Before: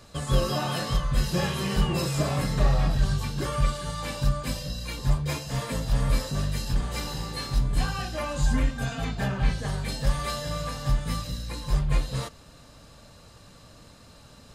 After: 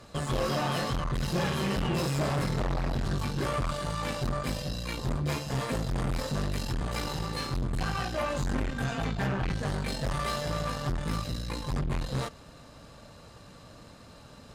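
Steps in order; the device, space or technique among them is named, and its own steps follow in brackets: tube preamp driven hard (tube stage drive 30 dB, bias 0.7; low shelf 97 Hz -5.5 dB; high shelf 3100 Hz -7 dB); gain +6.5 dB

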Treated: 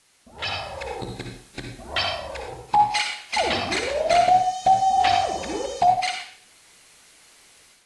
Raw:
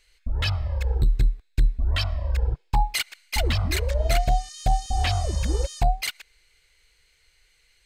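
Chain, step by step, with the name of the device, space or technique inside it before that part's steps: filmed off a television (BPF 270–6700 Hz; bell 760 Hz +9 dB 0.54 oct; reverb RT60 0.55 s, pre-delay 51 ms, DRR 2 dB; white noise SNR 28 dB; AGC gain up to 9 dB; gain -5.5 dB; AAC 48 kbps 24000 Hz)

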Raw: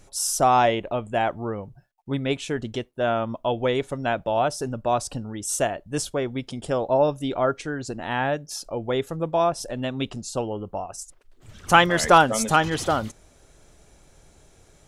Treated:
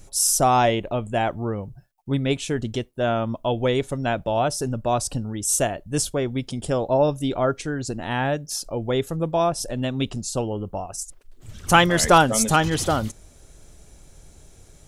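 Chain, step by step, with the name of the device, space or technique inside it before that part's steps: smiley-face EQ (low shelf 140 Hz +5.5 dB; bell 1200 Hz -3.5 dB 2.8 oct; high shelf 6900 Hz +6 dB); gain +2.5 dB

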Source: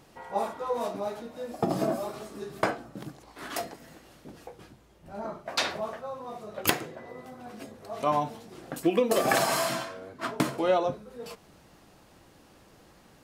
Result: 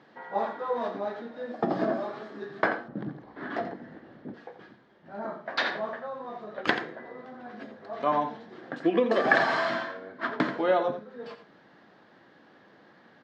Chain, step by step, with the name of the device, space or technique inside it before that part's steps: HPF 71 Hz; kitchen radio (speaker cabinet 190–3900 Hz, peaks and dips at 230 Hz +3 dB, 1700 Hz +9 dB, 2600 Hz -7 dB); echo 85 ms -10.5 dB; 2.88–4.34 tilt -3.5 dB/oct

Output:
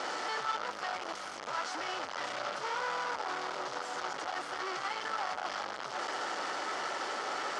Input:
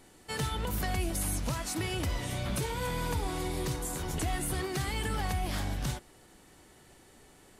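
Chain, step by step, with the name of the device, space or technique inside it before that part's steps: home computer beeper (infinite clipping; speaker cabinet 560–5300 Hz, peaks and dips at 570 Hz +4 dB, 830 Hz +4 dB, 1300 Hz +9 dB, 2500 Hz -5 dB, 3800 Hz -6 dB)

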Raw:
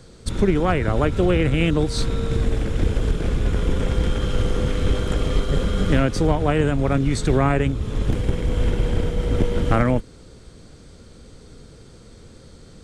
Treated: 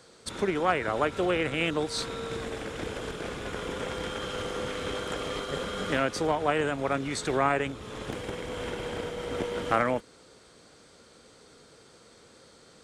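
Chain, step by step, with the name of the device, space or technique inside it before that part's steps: filter by subtraction (in parallel: LPF 910 Hz 12 dB/oct + phase invert); on the sum: gain -3.5 dB

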